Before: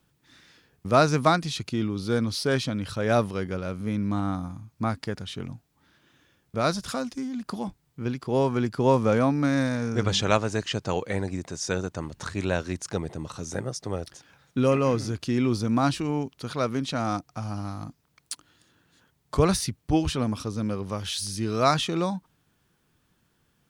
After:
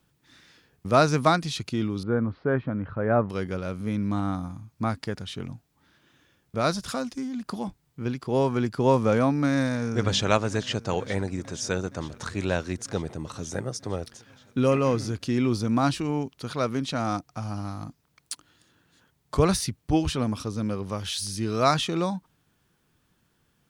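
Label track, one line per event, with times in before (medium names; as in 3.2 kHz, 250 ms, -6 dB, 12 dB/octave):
2.030000	3.300000	low-pass 1.7 kHz 24 dB/octave
9.560000	10.290000	echo throw 470 ms, feedback 80%, level -17.5 dB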